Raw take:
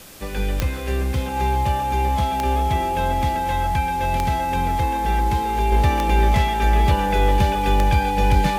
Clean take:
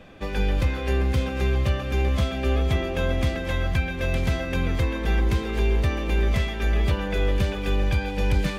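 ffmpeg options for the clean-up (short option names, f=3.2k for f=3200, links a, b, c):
-af "adeclick=t=4,bandreject=f=840:w=30,afwtdn=0.0071,asetnsamples=n=441:p=0,asendcmd='5.72 volume volume -4.5dB',volume=0dB"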